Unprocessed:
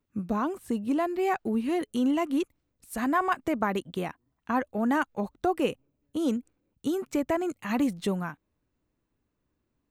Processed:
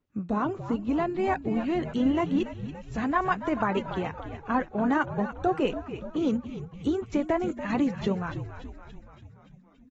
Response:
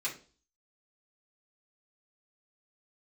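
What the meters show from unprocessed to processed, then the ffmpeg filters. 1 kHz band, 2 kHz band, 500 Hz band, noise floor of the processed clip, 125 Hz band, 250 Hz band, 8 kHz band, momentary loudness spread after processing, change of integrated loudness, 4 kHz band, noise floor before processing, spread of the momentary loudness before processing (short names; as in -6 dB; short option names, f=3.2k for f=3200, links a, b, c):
+1.0 dB, +0.5 dB, +1.0 dB, -54 dBFS, +5.5 dB, +1.0 dB, n/a, 10 LU, +0.5 dB, -0.5 dB, -79 dBFS, 9 LU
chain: -filter_complex "[0:a]highshelf=f=4.1k:g=-6,asplit=8[a][b][c][d][e][f][g][h];[b]adelay=286,afreqshift=-73,volume=-11dB[i];[c]adelay=572,afreqshift=-146,volume=-15.2dB[j];[d]adelay=858,afreqshift=-219,volume=-19.3dB[k];[e]adelay=1144,afreqshift=-292,volume=-23.5dB[l];[f]adelay=1430,afreqshift=-365,volume=-27.6dB[m];[g]adelay=1716,afreqshift=-438,volume=-31.8dB[n];[h]adelay=2002,afreqshift=-511,volume=-35.9dB[o];[a][i][j][k][l][m][n][o]amix=inputs=8:normalize=0" -ar 48000 -c:a aac -b:a 24k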